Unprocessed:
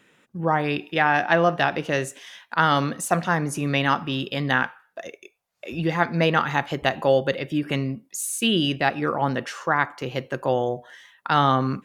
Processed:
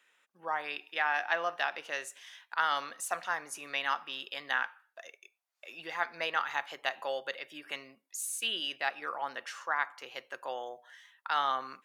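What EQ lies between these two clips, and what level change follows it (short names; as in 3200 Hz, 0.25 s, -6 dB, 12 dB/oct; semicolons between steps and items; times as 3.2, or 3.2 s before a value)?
HPF 870 Hz 12 dB/oct; -8.0 dB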